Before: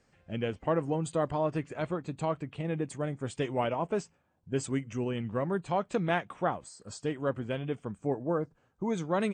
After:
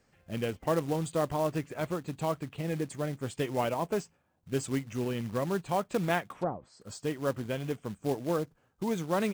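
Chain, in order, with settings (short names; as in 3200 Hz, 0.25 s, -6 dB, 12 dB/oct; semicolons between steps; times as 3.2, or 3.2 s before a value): short-mantissa float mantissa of 2-bit; 6.32–6.81 treble ducked by the level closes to 690 Hz, closed at -28 dBFS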